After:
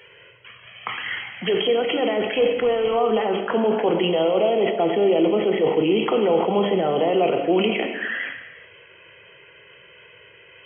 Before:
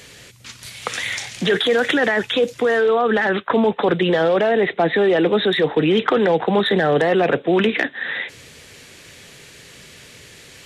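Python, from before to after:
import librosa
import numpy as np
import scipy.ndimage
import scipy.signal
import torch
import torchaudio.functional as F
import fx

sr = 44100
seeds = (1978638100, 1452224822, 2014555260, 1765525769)

y = fx.sample_sort(x, sr, block=8, at=(4.23, 5.99))
y = fx.highpass(y, sr, hz=410.0, slope=6)
y = fx.quant_companded(y, sr, bits=4, at=(2.36, 2.97))
y = fx.env_flanger(y, sr, rest_ms=2.3, full_db=-18.0)
y = fx.brickwall_lowpass(y, sr, high_hz=3300.0)
y = fx.rev_gated(y, sr, seeds[0], gate_ms=500, shape='falling', drr_db=5.0)
y = fx.sustainer(y, sr, db_per_s=65.0)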